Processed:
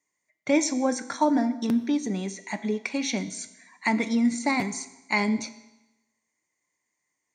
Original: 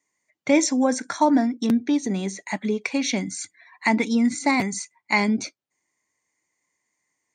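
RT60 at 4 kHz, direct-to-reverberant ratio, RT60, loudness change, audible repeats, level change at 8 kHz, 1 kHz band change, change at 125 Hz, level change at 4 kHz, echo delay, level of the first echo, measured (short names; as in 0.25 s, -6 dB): 0.95 s, 11.0 dB, 1.0 s, -3.5 dB, none, -3.5 dB, -4.0 dB, -3.5 dB, -3.5 dB, none, none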